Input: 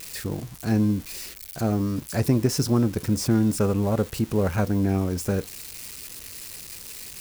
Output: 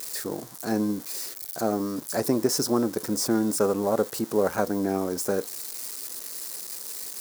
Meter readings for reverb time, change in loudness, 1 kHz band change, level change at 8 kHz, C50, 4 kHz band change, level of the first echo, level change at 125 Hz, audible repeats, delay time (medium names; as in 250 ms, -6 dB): no reverb, -3.0 dB, +3.0 dB, +3.0 dB, no reverb, +1.0 dB, no echo, -13.5 dB, no echo, no echo